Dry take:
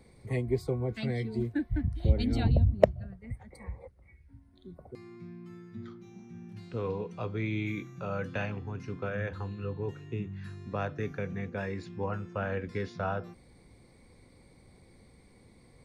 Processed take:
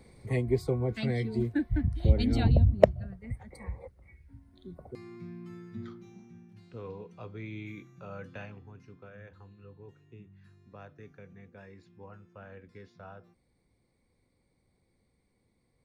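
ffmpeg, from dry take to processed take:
ffmpeg -i in.wav -af "volume=2dB,afade=type=out:start_time=5.82:duration=0.66:silence=0.298538,afade=type=out:start_time=8.23:duration=0.82:silence=0.446684" out.wav

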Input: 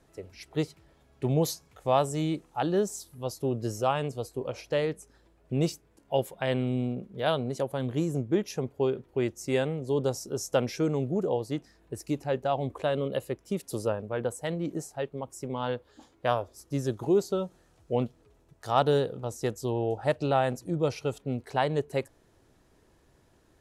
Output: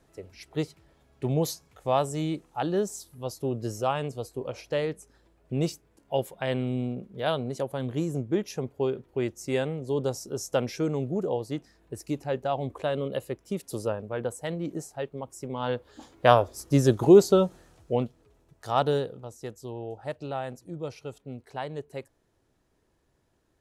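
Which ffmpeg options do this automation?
ffmpeg -i in.wav -af "volume=9dB,afade=type=in:start_time=15.56:duration=0.79:silence=0.334965,afade=type=out:start_time=17.43:duration=0.61:silence=0.334965,afade=type=out:start_time=18.85:duration=0.46:silence=0.421697" out.wav

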